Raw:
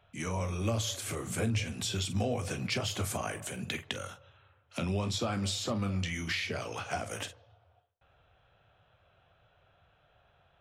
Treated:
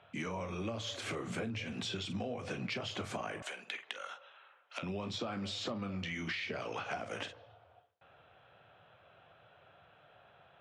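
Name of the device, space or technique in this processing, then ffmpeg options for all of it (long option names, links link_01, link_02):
AM radio: -filter_complex "[0:a]highpass=160,lowpass=3700,acompressor=threshold=-42dB:ratio=6,asoftclip=type=tanh:threshold=-29dB,asettb=1/sr,asplit=3[link_01][link_02][link_03];[link_01]atrim=end=3.424[link_04];[link_02]atrim=start=3.42:end=4.83,asetpts=PTS-STARTPTS,afade=type=in:duration=0.004:curve=qsin,afade=type=out:start_time=1.406:duration=0.004:curve=qsin,highpass=720[link_05];[link_03]atrim=start=4.826[link_06];[link_04][link_05]acrossfade=duration=0.004:curve1=hsin:curve2=qsin[link_07];[link_07][link_06]acrossfade=duration=0.004:curve1=qsin:curve2=hsin,volume=6dB"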